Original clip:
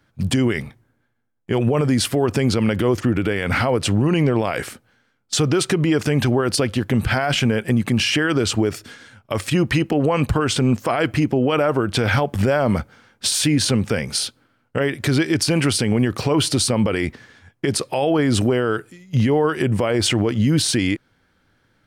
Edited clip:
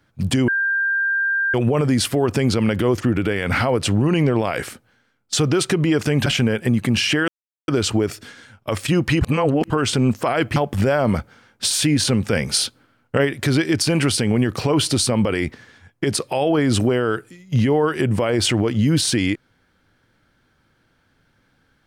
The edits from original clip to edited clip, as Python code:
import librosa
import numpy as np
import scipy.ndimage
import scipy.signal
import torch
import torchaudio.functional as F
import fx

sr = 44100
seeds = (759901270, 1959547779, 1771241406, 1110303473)

y = fx.edit(x, sr, fx.bleep(start_s=0.48, length_s=1.06, hz=1590.0, db=-17.0),
    fx.cut(start_s=6.26, length_s=1.03),
    fx.insert_silence(at_s=8.31, length_s=0.4),
    fx.reverse_span(start_s=9.84, length_s=0.49),
    fx.cut(start_s=11.19, length_s=0.98),
    fx.clip_gain(start_s=13.94, length_s=0.92, db=3.0), tone=tone)